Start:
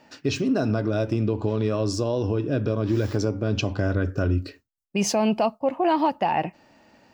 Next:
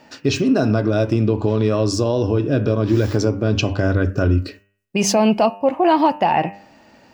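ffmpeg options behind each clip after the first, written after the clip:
-af "bandreject=f=99.63:t=h:w=4,bandreject=f=199.26:t=h:w=4,bandreject=f=298.89:t=h:w=4,bandreject=f=398.52:t=h:w=4,bandreject=f=498.15:t=h:w=4,bandreject=f=597.78:t=h:w=4,bandreject=f=697.41:t=h:w=4,bandreject=f=797.04:t=h:w=4,bandreject=f=896.67:t=h:w=4,bandreject=f=996.3:t=h:w=4,bandreject=f=1.09593k:t=h:w=4,bandreject=f=1.19556k:t=h:w=4,bandreject=f=1.29519k:t=h:w=4,bandreject=f=1.39482k:t=h:w=4,bandreject=f=1.49445k:t=h:w=4,bandreject=f=1.59408k:t=h:w=4,bandreject=f=1.69371k:t=h:w=4,bandreject=f=1.79334k:t=h:w=4,bandreject=f=1.89297k:t=h:w=4,bandreject=f=1.9926k:t=h:w=4,bandreject=f=2.09223k:t=h:w=4,bandreject=f=2.19186k:t=h:w=4,bandreject=f=2.29149k:t=h:w=4,bandreject=f=2.39112k:t=h:w=4,bandreject=f=2.49075k:t=h:w=4,bandreject=f=2.59038k:t=h:w=4,bandreject=f=2.69001k:t=h:w=4,bandreject=f=2.78964k:t=h:w=4,bandreject=f=2.88927k:t=h:w=4,bandreject=f=2.9889k:t=h:w=4,volume=6.5dB"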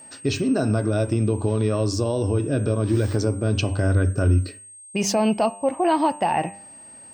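-af "equalizer=f=96:t=o:w=0.31:g=6,aeval=exprs='val(0)+0.0141*sin(2*PI*8400*n/s)':c=same,volume=-5dB"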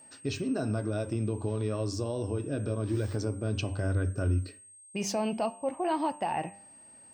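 -af "flanger=delay=0.2:depth=7.2:regen=-87:speed=0.29:shape=triangular,volume=-5dB"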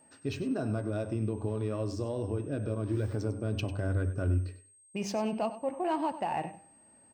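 -filter_complex "[0:a]asplit=2[a][b];[b]adynamicsmooth=sensitivity=7.5:basefreq=2.4k,volume=1.5dB[c];[a][c]amix=inputs=2:normalize=0,aecho=1:1:98|196:0.2|0.0359,volume=-8dB"

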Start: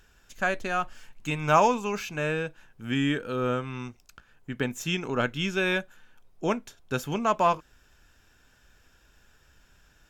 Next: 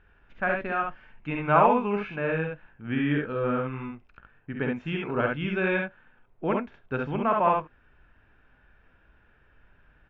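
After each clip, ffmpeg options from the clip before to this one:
-af "lowpass=f=2.4k:w=0.5412,lowpass=f=2.4k:w=1.3066,aecho=1:1:49|69:0.422|0.708,volume=-1dB"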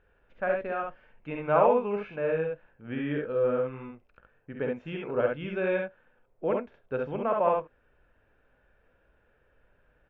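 -af "equalizer=f=520:w=2:g=12,volume=-7.5dB"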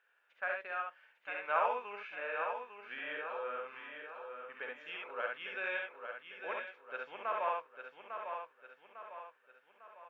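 -filter_complex "[0:a]highpass=1.3k,asplit=2[a][b];[b]aecho=0:1:851|1702|2553|3404|4255:0.447|0.201|0.0905|0.0407|0.0183[c];[a][c]amix=inputs=2:normalize=0"

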